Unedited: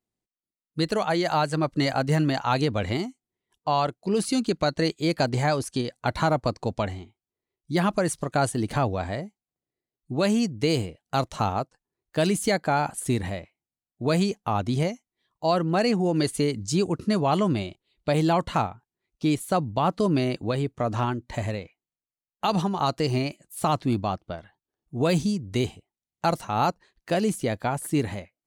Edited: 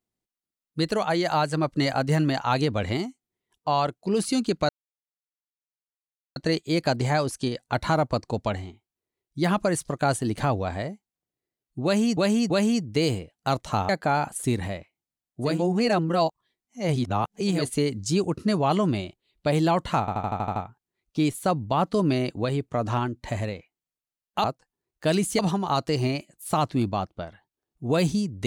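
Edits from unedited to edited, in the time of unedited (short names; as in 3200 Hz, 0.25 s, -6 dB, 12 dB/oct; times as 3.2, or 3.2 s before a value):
4.69 insert silence 1.67 s
10.17–10.5 loop, 3 plays
11.56–12.51 move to 22.5
14.14–16.2 reverse, crossfade 0.24 s
18.62 stutter 0.08 s, 8 plays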